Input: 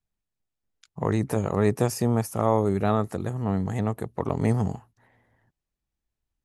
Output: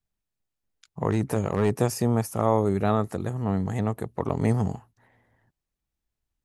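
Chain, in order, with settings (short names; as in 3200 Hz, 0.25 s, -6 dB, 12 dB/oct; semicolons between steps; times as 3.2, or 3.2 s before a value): 1.09–1.7 hard clip -15.5 dBFS, distortion -22 dB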